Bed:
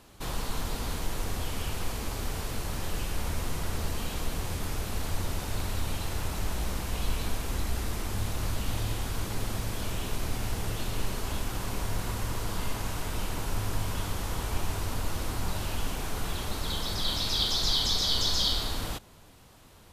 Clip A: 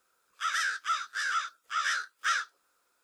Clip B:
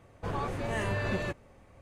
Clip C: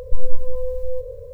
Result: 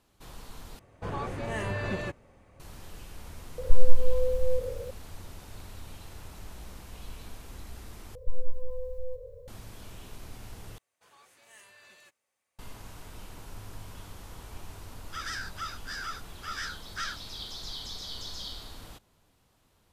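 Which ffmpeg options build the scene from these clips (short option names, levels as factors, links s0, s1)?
-filter_complex "[2:a]asplit=2[s0][s1];[3:a]asplit=2[s2][s3];[0:a]volume=0.224[s4];[s1]aderivative[s5];[1:a]equalizer=f=4800:t=o:w=0.27:g=9.5[s6];[s4]asplit=4[s7][s8][s9][s10];[s7]atrim=end=0.794[s11];[s0]atrim=end=1.81,asetpts=PTS-STARTPTS,volume=0.891[s12];[s8]atrim=start=2.596:end=8.154[s13];[s3]atrim=end=1.33,asetpts=PTS-STARTPTS,volume=0.282[s14];[s9]atrim=start=9.476:end=10.784[s15];[s5]atrim=end=1.81,asetpts=PTS-STARTPTS,volume=0.422[s16];[s10]atrim=start=12.586[s17];[s2]atrim=end=1.33,asetpts=PTS-STARTPTS,volume=0.891,afade=t=in:d=0.004:c=hsin,afade=t=out:st=1.326:d=0.004:c=hsin,adelay=3580[s18];[s6]atrim=end=3.03,asetpts=PTS-STARTPTS,volume=0.398,afade=t=in:d=0.004:c=hsin,afade=t=out:st=3.026:d=0.004:c=hsin,adelay=14720[s19];[s11][s12]acrossfade=d=0.004:c1=hsin:c2=hsin[s20];[s20][s13]acrossfade=d=0.004:c1=hsin:c2=hsin[s21];[s21][s14]acrossfade=d=0.004:c1=hsin:c2=hsin[s22];[s22][s15]acrossfade=d=0.004:c1=hsin:c2=hsin[s23];[s23][s16]acrossfade=d=0.004:c1=hsin:c2=hsin[s24];[s24][s17]acrossfade=d=0.004:c1=hsin:c2=hsin[s25];[s25][s18][s19]amix=inputs=3:normalize=0"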